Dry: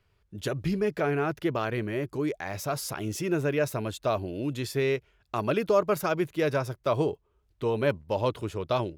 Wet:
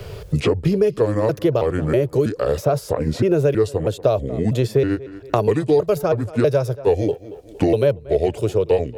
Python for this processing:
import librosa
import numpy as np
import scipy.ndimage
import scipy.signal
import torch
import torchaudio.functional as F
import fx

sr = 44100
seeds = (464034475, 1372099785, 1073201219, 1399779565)

p1 = fx.pitch_trill(x, sr, semitones=-5.5, every_ms=322)
p2 = fx.graphic_eq(p1, sr, hz=(125, 250, 500, 1000, 2000), db=(7, -7, 12, -5, -6))
p3 = p2 + fx.echo_tape(p2, sr, ms=231, feedback_pct=24, wet_db=-22, lp_hz=4700.0, drive_db=6.0, wow_cents=19, dry=0)
p4 = fx.band_squash(p3, sr, depth_pct=100)
y = p4 * librosa.db_to_amplitude(4.5)